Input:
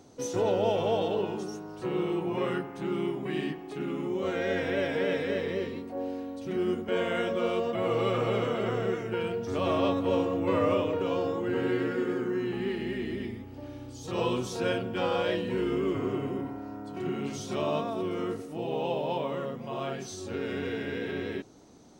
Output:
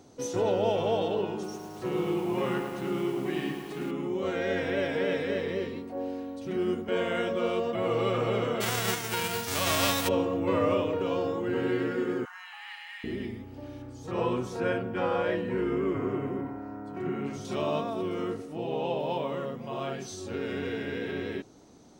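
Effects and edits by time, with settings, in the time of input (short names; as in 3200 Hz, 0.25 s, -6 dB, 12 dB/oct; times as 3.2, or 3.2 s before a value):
1.32–3.91 lo-fi delay 0.107 s, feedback 80%, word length 8-bit, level -8 dB
8.6–10.07 spectral whitening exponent 0.3
12.25–13.04 steep high-pass 780 Hz 72 dB/oct
13.82–17.45 resonant high shelf 2500 Hz -7 dB, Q 1.5
18.3–19 high shelf 9500 Hz -8 dB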